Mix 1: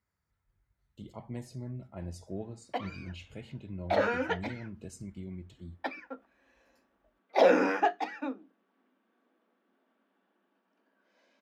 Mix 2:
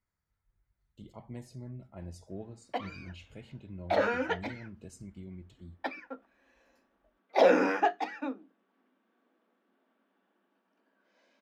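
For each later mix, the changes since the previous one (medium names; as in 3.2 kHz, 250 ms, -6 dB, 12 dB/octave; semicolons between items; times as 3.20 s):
speech -3.5 dB; master: remove high-pass 47 Hz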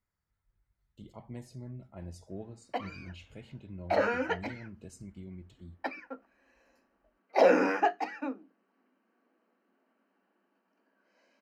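background: add Butterworth band-stop 3.5 kHz, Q 4.9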